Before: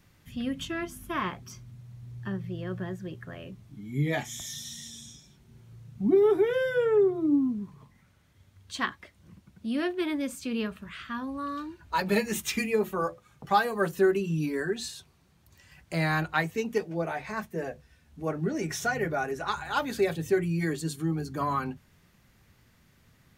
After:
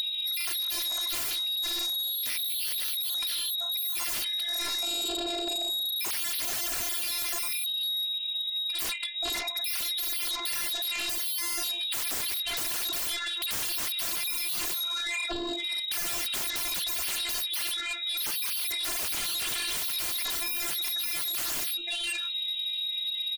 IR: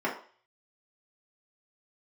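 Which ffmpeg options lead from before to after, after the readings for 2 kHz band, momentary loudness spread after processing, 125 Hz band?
-1.0 dB, 2 LU, -22.5 dB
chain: -filter_complex "[0:a]lowpass=f=3.4k:t=q:w=0.5098,lowpass=f=3.4k:t=q:w=0.6013,lowpass=f=3.4k:t=q:w=0.9,lowpass=f=3.4k:t=q:w=2.563,afreqshift=-4000,lowshelf=f=410:g=9.5,acrossover=split=1700[a][b];[a]adelay=530[c];[c][b]amix=inputs=2:normalize=0,asplit=2[d][e];[1:a]atrim=start_sample=2205,lowpass=2.1k[f];[e][f]afir=irnorm=-1:irlink=0,volume=-11dB[g];[d][g]amix=inputs=2:normalize=0,aexciter=amount=4.6:drive=0.9:freq=2.1k,aemphasis=mode=production:type=50fm,afftfilt=real='hypot(re,im)*cos(PI*b)':imag='0':win_size=512:overlap=0.75,afftdn=nr=26:nf=-54,asplit=2[h][i];[i]acompressor=mode=upward:threshold=-22dB:ratio=2.5,volume=-1dB[j];[h][j]amix=inputs=2:normalize=0,aeval=exprs='0.266*sin(PI/2*7.08*val(0)/0.266)':c=same,acompressor=threshold=-32dB:ratio=6"

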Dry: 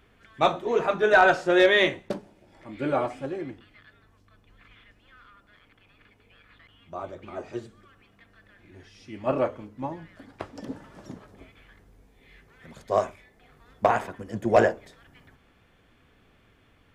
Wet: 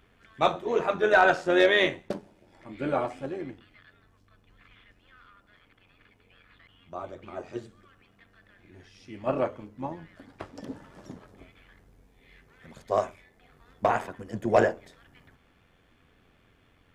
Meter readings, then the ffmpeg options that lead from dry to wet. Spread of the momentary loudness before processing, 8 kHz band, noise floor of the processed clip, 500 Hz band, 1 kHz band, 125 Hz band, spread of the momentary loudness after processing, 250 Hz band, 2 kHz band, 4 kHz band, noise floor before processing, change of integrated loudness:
21 LU, n/a, -64 dBFS, -2.0 dB, -2.0 dB, -2.0 dB, 22 LU, -2.0 dB, -2.0 dB, -2.0 dB, -61 dBFS, -2.0 dB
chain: -af "tremolo=f=88:d=0.462"

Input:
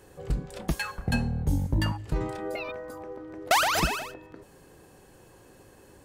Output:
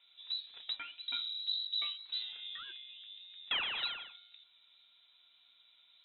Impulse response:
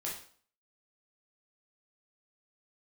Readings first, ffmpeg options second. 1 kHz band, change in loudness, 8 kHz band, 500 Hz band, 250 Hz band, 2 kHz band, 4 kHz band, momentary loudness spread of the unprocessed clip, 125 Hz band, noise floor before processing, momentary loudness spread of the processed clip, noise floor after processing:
-20.5 dB, -8.0 dB, under -40 dB, -28.5 dB, under -35 dB, -11.5 dB, +1.5 dB, 17 LU, under -40 dB, -55 dBFS, 15 LU, -67 dBFS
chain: -af "lowpass=f=3.4k:t=q:w=0.5098,lowpass=f=3.4k:t=q:w=0.6013,lowpass=f=3.4k:t=q:w=0.9,lowpass=f=3.4k:t=q:w=2.563,afreqshift=-4000,flanger=delay=6.9:depth=4.1:regen=63:speed=1.8:shape=triangular,volume=-7.5dB"

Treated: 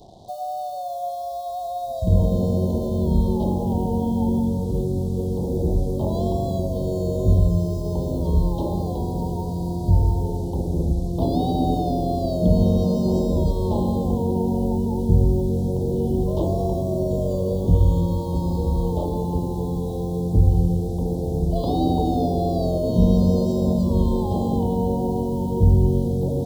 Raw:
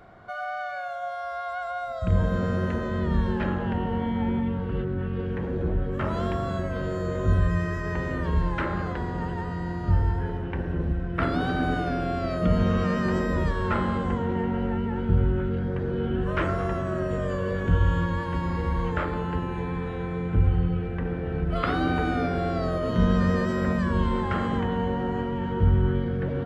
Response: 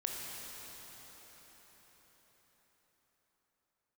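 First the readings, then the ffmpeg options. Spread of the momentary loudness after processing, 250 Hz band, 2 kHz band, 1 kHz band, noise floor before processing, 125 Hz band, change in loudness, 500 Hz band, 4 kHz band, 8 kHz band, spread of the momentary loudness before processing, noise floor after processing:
8 LU, +5.0 dB, under -40 dB, +1.0 dB, -32 dBFS, +5.0 dB, +4.5 dB, +5.0 dB, +0.5 dB, n/a, 7 LU, -29 dBFS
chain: -af "acrusher=bits=7:mix=0:aa=0.5,asuperstop=centerf=1800:order=12:qfactor=0.67,volume=5dB"

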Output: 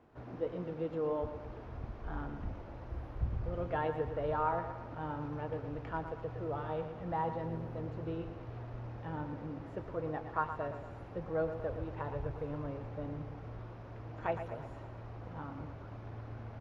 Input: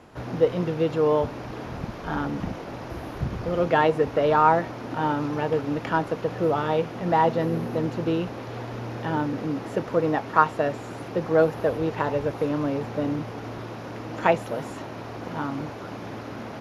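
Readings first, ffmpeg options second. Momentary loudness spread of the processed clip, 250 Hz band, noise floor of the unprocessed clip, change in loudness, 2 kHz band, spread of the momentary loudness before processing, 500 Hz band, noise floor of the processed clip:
11 LU, -15.0 dB, -37 dBFS, -14.0 dB, -16.0 dB, 15 LU, -14.0 dB, -48 dBFS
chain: -filter_complex "[0:a]lowpass=f=1.4k:p=1,asubboost=boost=9:cutoff=77,flanger=delay=2.7:depth=1.1:regen=-76:speed=0.49:shape=sinusoidal,asplit=2[a][b];[b]aecho=0:1:116|232|348|464|580|696:0.335|0.174|0.0906|0.0471|0.0245|0.0127[c];[a][c]amix=inputs=2:normalize=0,volume=-8.5dB"

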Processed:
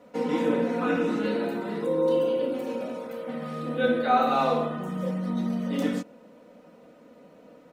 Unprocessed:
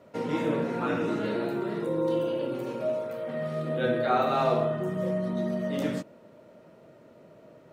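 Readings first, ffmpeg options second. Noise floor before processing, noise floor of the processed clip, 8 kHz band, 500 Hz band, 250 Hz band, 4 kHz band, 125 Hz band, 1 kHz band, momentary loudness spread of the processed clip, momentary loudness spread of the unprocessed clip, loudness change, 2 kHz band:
-54 dBFS, -53 dBFS, n/a, +1.0 dB, +3.0 dB, +2.5 dB, -1.5 dB, +3.5 dB, 12 LU, 8 LU, +2.0 dB, +2.5 dB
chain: -af "equalizer=f=75:t=o:w=0.76:g=-6.5,aecho=1:1:4:0.85"

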